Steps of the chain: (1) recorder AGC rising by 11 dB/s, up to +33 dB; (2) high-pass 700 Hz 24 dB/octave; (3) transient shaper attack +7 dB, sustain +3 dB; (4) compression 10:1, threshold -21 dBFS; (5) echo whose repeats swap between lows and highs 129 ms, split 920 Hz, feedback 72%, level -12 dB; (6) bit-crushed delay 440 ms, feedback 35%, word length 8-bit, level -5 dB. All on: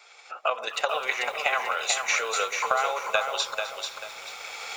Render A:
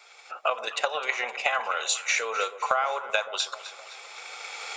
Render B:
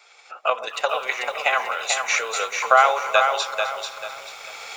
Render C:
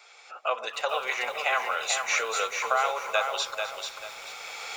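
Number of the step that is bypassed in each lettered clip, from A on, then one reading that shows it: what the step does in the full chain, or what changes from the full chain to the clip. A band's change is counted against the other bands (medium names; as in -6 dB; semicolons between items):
6, momentary loudness spread change +3 LU; 4, mean gain reduction 1.5 dB; 3, loudness change -1.0 LU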